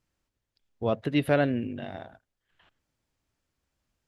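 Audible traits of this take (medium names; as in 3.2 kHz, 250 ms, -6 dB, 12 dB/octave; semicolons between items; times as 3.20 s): noise floor -84 dBFS; spectral tilt -6.0 dB/octave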